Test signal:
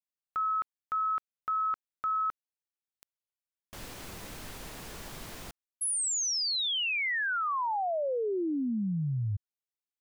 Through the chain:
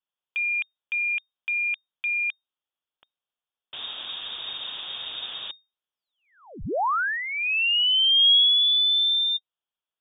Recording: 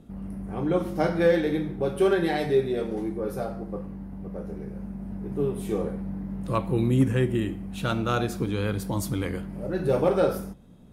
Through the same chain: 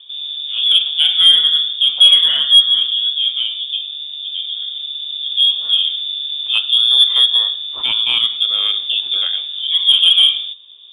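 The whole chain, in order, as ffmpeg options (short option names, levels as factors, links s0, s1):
-af "equalizer=f=100:t=o:w=0.67:g=-4,equalizer=f=400:t=o:w=0.67:g=5,equalizer=f=1600:t=o:w=0.67:g=-11,lowpass=f=3100:t=q:w=0.5098,lowpass=f=3100:t=q:w=0.6013,lowpass=f=3100:t=q:w=0.9,lowpass=f=3100:t=q:w=2.563,afreqshift=-3700,acontrast=85,volume=1.33"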